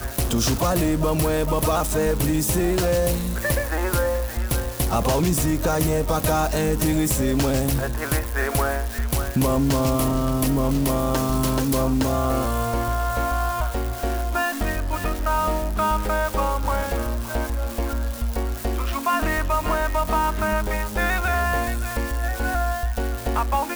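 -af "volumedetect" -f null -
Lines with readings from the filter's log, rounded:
mean_volume: -22.0 dB
max_volume: -9.7 dB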